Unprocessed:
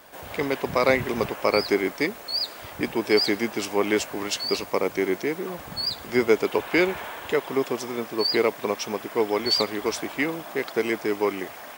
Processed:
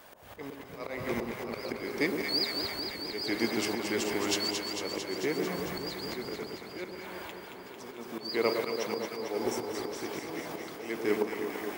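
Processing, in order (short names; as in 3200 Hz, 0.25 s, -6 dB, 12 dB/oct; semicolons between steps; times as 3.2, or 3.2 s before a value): regenerating reverse delay 0.101 s, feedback 52%, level -11 dB; 6.43–7.91 level quantiser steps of 20 dB; 9.29–9.72 spectral repair 780–5300 Hz before; auto swell 0.359 s; on a send: echo with dull and thin repeats by turns 0.112 s, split 1100 Hz, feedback 86%, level -4.5 dB; on the sum: gain -3.5 dB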